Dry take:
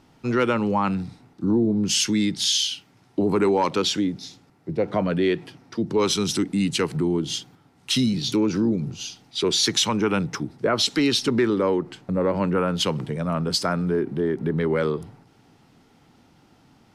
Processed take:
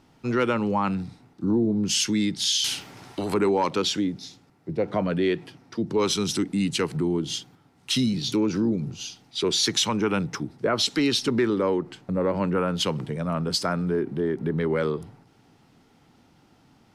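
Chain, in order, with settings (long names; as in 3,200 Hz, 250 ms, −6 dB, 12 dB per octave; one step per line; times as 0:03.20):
0:02.64–0:03.34: every bin compressed towards the loudest bin 2 to 1
level −2 dB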